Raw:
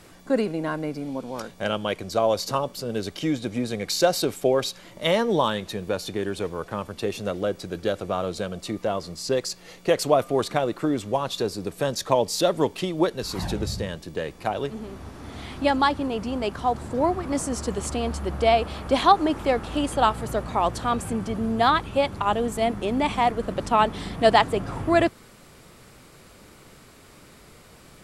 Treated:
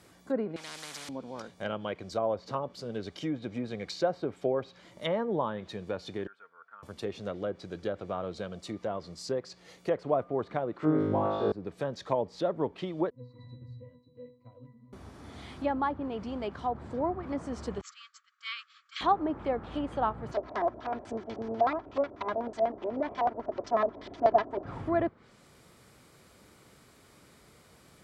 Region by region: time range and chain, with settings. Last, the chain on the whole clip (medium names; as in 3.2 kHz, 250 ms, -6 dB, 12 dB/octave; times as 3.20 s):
0.56–1.09 s: high-pass 270 Hz + spectrum-flattening compressor 10:1
6.27–6.83 s: band-pass filter 1.4 kHz, Q 8.9 + comb 4.4 ms, depth 44%
10.78–11.52 s: low-pass 6.6 kHz + flutter echo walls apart 3.3 m, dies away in 1.4 s
13.10–14.93 s: high-pass 100 Hz + bass shelf 200 Hz +8.5 dB + pitch-class resonator B, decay 0.35 s
17.81–19.01 s: brick-wall FIR band-pass 1.1–7.8 kHz + expander -34 dBFS
20.31–24.65 s: comb filter that takes the minimum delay 3 ms + bass shelf 160 Hz -10 dB + LFO low-pass square 8.1 Hz 640–5800 Hz
whole clip: high-pass 54 Hz; band-stop 2.7 kHz, Q 18; low-pass that closes with the level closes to 1.4 kHz, closed at -19.5 dBFS; trim -8 dB